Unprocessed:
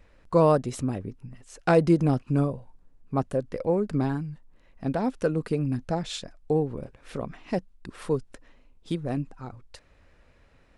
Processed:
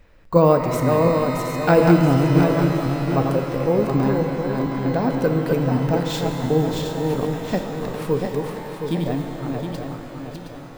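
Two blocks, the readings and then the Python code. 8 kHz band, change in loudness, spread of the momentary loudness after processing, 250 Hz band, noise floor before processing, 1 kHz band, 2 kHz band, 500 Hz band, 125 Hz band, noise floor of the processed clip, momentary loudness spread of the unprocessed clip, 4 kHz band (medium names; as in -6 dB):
+7.0 dB, +6.5 dB, 12 LU, +7.5 dB, -59 dBFS, +8.0 dB, +9.5 dB, +7.5 dB, +8.0 dB, -37 dBFS, 17 LU, +8.5 dB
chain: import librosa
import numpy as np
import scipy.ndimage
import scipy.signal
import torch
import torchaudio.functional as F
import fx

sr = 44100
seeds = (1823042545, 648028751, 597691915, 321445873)

y = fx.reverse_delay_fb(x, sr, ms=359, feedback_pct=64, wet_db=-4)
y = np.repeat(y[::2], 2)[:len(y)]
y = fx.rev_shimmer(y, sr, seeds[0], rt60_s=3.8, semitones=12, shimmer_db=-8, drr_db=5.5)
y = F.gain(torch.from_numpy(y), 4.0).numpy()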